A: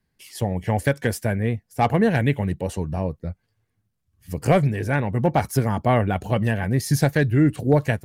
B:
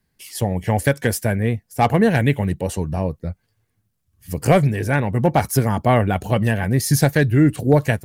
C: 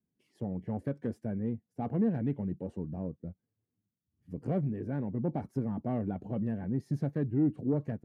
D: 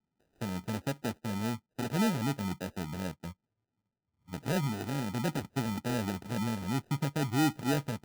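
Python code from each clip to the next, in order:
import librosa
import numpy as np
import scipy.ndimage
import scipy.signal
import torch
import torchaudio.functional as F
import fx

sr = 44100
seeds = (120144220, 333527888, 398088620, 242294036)

y1 = fx.high_shelf(x, sr, hz=6700.0, db=6.5)
y1 = y1 * librosa.db_to_amplitude(3.0)
y2 = 10.0 ** (-10.0 / 20.0) * np.tanh(y1 / 10.0 ** (-10.0 / 20.0))
y2 = fx.bandpass_q(y2, sr, hz=250.0, q=1.5)
y2 = y2 * librosa.db_to_amplitude(-7.5)
y3 = fx.sample_hold(y2, sr, seeds[0], rate_hz=1100.0, jitter_pct=0)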